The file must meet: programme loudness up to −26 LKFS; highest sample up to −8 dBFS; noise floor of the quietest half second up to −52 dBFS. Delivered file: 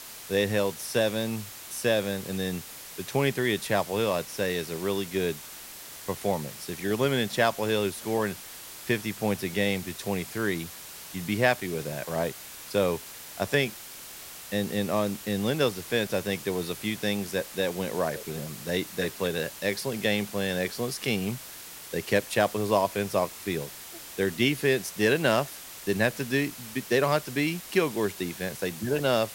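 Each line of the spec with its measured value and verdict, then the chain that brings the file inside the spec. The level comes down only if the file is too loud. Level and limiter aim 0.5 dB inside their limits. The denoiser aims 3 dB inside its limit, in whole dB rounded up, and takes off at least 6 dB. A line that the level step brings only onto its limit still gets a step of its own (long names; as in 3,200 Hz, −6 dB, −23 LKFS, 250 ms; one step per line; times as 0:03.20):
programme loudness −28.5 LKFS: in spec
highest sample −6.5 dBFS: out of spec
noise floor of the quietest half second −43 dBFS: out of spec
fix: broadband denoise 12 dB, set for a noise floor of −43 dBFS
brickwall limiter −8.5 dBFS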